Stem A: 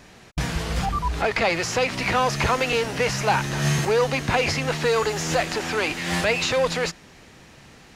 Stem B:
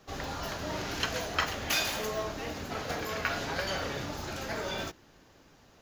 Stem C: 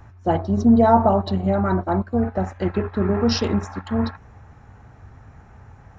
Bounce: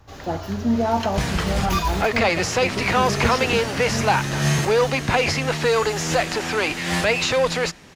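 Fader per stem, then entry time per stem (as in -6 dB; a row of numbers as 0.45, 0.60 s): +2.0, -1.0, -6.5 dB; 0.80, 0.00, 0.00 s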